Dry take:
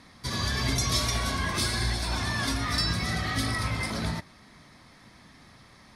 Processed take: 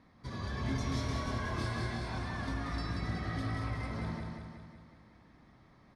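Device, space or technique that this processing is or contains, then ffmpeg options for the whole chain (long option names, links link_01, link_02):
through cloth: -filter_complex "[0:a]asettb=1/sr,asplit=3[link_01][link_02][link_03];[link_01]atrim=end=0.624[link_04];[link_02]atrim=start=0.62:end=2.19,asetpts=PTS-STARTPTS,afade=type=in:duration=0.004:curve=qsin,afade=type=out:start_time=1.566:duration=0.004:curve=qsin,asplit=2[link_05][link_06];[link_06]adelay=26,volume=-3dB[link_07];[link_05][link_07]amix=inputs=2:normalize=0,atrim=end_sample=69237[link_08];[link_03]atrim=start=2.186[link_09];[link_04][link_08]acrossfade=duration=0.004:curve1=hsin:curve2=qsin[link_10];[link_10][link_09]acrossfade=duration=0.004:curve1=qsin:curve2=hsin,lowpass=9200,highshelf=frequency=2500:gain=-17,aecho=1:1:184|368|552|736|920|1104|1288:0.631|0.347|0.191|0.105|0.0577|0.0318|0.0175,volume=-7.5dB"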